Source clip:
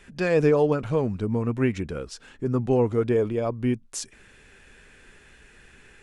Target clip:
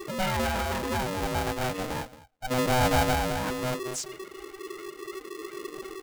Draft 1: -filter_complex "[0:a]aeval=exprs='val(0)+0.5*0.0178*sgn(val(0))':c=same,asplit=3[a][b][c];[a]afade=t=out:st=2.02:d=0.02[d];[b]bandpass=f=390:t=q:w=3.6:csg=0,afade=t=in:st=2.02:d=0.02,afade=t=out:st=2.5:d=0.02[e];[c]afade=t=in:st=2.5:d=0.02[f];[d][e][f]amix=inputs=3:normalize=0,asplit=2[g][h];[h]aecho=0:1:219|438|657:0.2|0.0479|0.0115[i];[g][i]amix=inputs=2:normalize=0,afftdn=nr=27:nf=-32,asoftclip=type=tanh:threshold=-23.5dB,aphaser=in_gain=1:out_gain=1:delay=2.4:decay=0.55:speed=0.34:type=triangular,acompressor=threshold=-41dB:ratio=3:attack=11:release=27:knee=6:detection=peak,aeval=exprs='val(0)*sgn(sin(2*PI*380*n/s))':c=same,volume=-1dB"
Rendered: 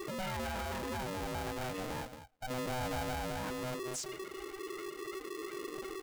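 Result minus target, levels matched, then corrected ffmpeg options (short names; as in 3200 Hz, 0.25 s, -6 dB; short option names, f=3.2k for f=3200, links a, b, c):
compressor: peak gain reduction +14.5 dB
-filter_complex "[0:a]aeval=exprs='val(0)+0.5*0.0178*sgn(val(0))':c=same,asplit=3[a][b][c];[a]afade=t=out:st=2.02:d=0.02[d];[b]bandpass=f=390:t=q:w=3.6:csg=0,afade=t=in:st=2.02:d=0.02,afade=t=out:st=2.5:d=0.02[e];[c]afade=t=in:st=2.5:d=0.02[f];[d][e][f]amix=inputs=3:normalize=0,asplit=2[g][h];[h]aecho=0:1:219|438|657:0.2|0.0479|0.0115[i];[g][i]amix=inputs=2:normalize=0,afftdn=nr=27:nf=-32,asoftclip=type=tanh:threshold=-23.5dB,aphaser=in_gain=1:out_gain=1:delay=2.4:decay=0.55:speed=0.34:type=triangular,aeval=exprs='val(0)*sgn(sin(2*PI*380*n/s))':c=same,volume=-1dB"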